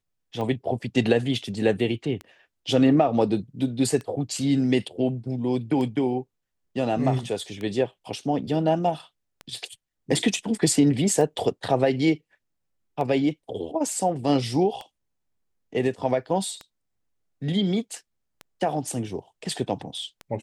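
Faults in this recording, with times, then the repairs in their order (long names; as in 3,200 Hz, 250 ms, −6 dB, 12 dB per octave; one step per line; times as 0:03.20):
scratch tick 33 1/3 rpm −21 dBFS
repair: click removal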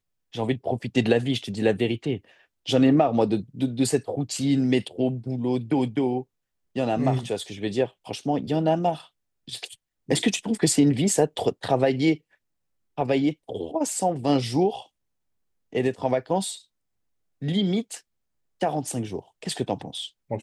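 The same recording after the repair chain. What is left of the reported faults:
none of them is left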